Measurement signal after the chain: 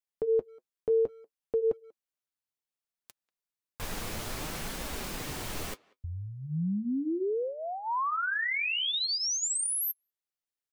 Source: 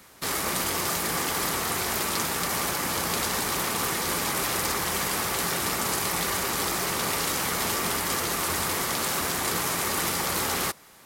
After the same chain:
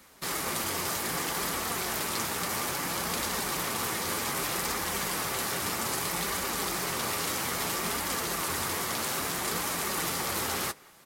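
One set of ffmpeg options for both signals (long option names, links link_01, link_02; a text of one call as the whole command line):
ffmpeg -i in.wav -filter_complex "[0:a]flanger=delay=3.3:depth=7:regen=-46:speed=0.62:shape=triangular,asplit=2[link_01][link_02];[link_02]adelay=190,highpass=300,lowpass=3400,asoftclip=type=hard:threshold=-24dB,volume=-25dB[link_03];[link_01][link_03]amix=inputs=2:normalize=0" out.wav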